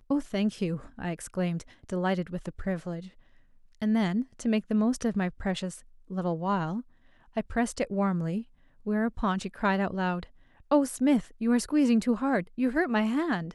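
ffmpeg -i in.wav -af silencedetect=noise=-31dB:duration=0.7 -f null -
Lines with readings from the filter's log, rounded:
silence_start: 3.00
silence_end: 3.82 | silence_duration: 0.82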